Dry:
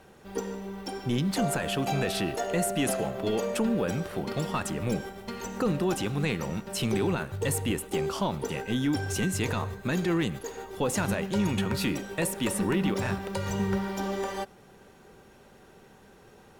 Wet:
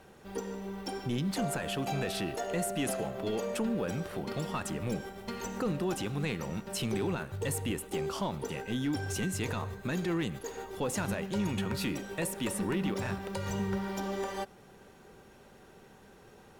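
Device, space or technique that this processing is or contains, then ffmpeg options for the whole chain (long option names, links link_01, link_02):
clipper into limiter: -af "asoftclip=type=hard:threshold=-20dB,alimiter=limit=-23.5dB:level=0:latency=1:release=297,volume=-1.5dB"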